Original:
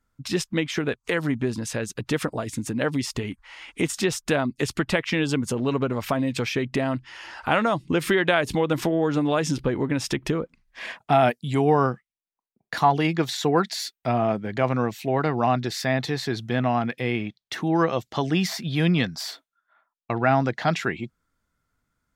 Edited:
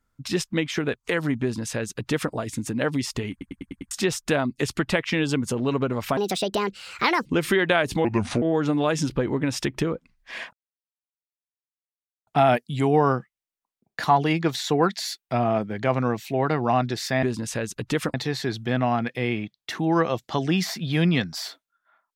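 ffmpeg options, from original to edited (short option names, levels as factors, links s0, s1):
-filter_complex "[0:a]asplit=14[s0][s1][s2][s3][s4][s5][s6][s7][s8][s9][s10][s11][s12][s13];[s0]atrim=end=3.412[s14];[s1]atrim=start=3.308:end=3.412[s15];[s2]atrim=start=3.308:end=3.412[s16];[s3]atrim=start=3.308:end=3.412[s17];[s4]atrim=start=3.308:end=3.412[s18];[s5]atrim=start=3.308:end=3.412[s19];[s6]atrim=start=3.908:end=6.174[s20];[s7]atrim=start=6.17:end=7.84,asetpts=PTS-STARTPTS,asetrate=67914,aresample=44100[s21];[s8]atrim=start=7.836:end=8.634[s22];[s9]atrim=start=8.63:end=8.9,asetpts=PTS-STARTPTS,asetrate=31752,aresample=44100[s23];[s10]atrim=start=8.896:end=11.01,asetpts=PTS-STARTPTS,afade=t=out:st=2.11:d=0.004:c=hsin,apad=pad_dur=1.74[s24];[s11]atrim=start=11.01:end=15.972,asetpts=PTS-STARTPTS,afade=t=in:d=0.004:c=hsin[s25];[s12]atrim=start=1.418:end=2.332[s26];[s13]atrim=start=15.968[s27];[s14][s15]acrossfade=d=0.004:c1=hsin:c2=hsin[s28];[s28][s16]acrossfade=d=0.004:c1=hsin:c2=hsin[s29];[s29][s17]acrossfade=d=0.004:c1=hsin:c2=hsin[s30];[s30][s18]acrossfade=d=0.004:c1=hsin:c2=hsin[s31];[s31][s19]acrossfade=d=0.004:c1=hsin:c2=hsin[s32];[s32][s20]acrossfade=d=0.004:c1=hsin:c2=hsin[s33];[s33][s21]acrossfade=d=0.004:c1=hsin:c2=hsin[s34];[s34][s22]acrossfade=d=0.004:c1=hsin:c2=hsin[s35];[s35][s23]acrossfade=d=0.004:c1=hsin:c2=hsin[s36];[s24][s25]concat=n=2:v=0:a=1[s37];[s36][s37]acrossfade=d=0.004:c1=hsin:c2=hsin[s38];[s38][s26]acrossfade=d=0.004:c1=hsin:c2=hsin[s39];[s39][s27]acrossfade=d=0.004:c1=hsin:c2=hsin"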